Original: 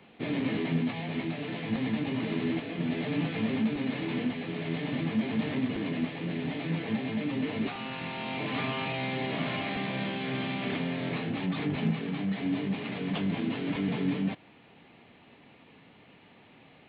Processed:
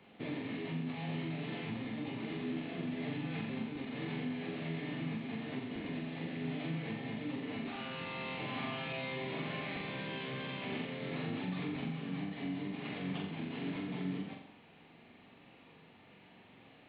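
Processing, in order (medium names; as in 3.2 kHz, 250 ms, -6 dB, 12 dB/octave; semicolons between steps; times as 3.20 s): compression, threshold -32 dBFS, peak gain reduction 9 dB; flutter echo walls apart 7.5 m, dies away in 0.68 s; trim -5.5 dB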